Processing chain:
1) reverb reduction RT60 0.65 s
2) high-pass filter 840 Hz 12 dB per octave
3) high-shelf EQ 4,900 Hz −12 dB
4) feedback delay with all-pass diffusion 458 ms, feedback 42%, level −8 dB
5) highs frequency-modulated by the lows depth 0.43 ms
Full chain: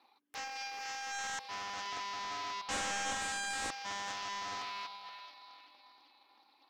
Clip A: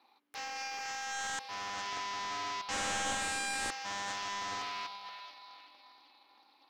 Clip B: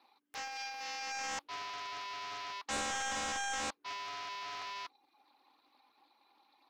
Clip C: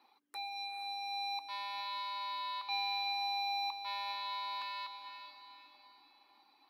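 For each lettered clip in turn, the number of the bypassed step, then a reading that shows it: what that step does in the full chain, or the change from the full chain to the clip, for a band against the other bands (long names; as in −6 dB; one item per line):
1, change in integrated loudness +2.0 LU
4, change in momentary loudness spread −6 LU
5, 500 Hz band −13.5 dB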